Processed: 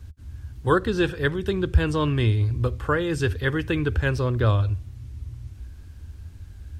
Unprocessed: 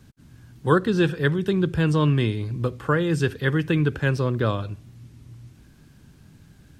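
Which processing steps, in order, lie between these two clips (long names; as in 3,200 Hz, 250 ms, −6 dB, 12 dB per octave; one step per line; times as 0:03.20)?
low shelf with overshoot 110 Hz +12 dB, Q 3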